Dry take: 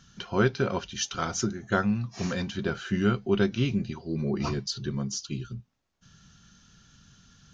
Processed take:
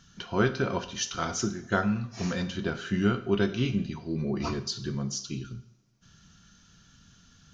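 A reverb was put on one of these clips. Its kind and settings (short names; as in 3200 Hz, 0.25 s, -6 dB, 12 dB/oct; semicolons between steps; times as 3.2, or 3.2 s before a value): two-slope reverb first 0.58 s, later 2.2 s, from -24 dB, DRR 8 dB; gain -1 dB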